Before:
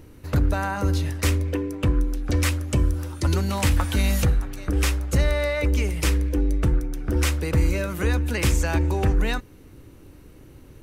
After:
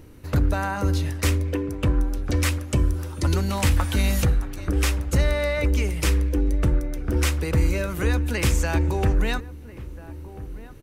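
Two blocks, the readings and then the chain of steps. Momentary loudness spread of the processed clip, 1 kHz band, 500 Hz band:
13 LU, 0.0 dB, 0.0 dB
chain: echo from a far wall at 230 m, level -16 dB

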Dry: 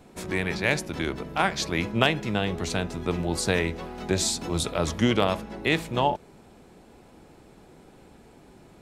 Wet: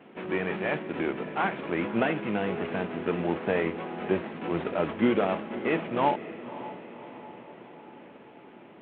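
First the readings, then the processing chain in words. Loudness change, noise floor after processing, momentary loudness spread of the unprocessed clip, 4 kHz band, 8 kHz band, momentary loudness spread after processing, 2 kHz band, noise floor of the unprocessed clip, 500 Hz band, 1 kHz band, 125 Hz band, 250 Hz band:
-3.0 dB, -50 dBFS, 6 LU, -13.5 dB, under -40 dB, 19 LU, -4.5 dB, -53 dBFS, 0.0 dB, -1.0 dB, -7.5 dB, -1.0 dB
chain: CVSD coder 16 kbps; Chebyshev high-pass 240 Hz, order 2; on a send: echo that smears into a reverb 572 ms, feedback 57%, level -14 dB; on the sum: trim +2 dB

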